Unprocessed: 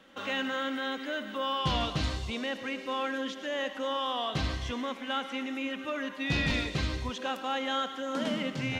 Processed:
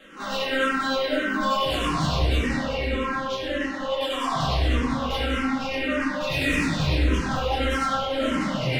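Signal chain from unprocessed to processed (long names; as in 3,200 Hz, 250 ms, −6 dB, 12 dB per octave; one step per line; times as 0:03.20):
0:02.57–0:04.01: downward compressor 3 to 1, threshold −36 dBFS, peak gain reduction 7 dB
square-wave tremolo 10 Hz, depth 60%, duty 50%
soft clipping −36 dBFS, distortion −7 dB
convolution reverb RT60 2.3 s, pre-delay 5 ms, DRR −10 dB
frequency shifter mixed with the dry sound −1.7 Hz
level +8 dB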